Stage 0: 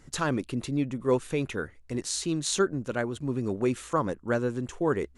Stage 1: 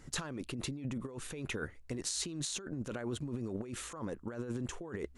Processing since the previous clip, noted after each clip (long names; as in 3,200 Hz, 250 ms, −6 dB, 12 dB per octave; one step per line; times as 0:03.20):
compressor whose output falls as the input rises −34 dBFS, ratio −1
level −5.5 dB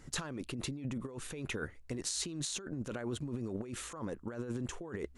no processing that can be heard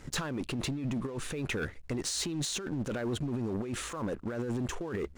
high-shelf EQ 8,000 Hz −8.5 dB
leveller curve on the samples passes 3
level −3.5 dB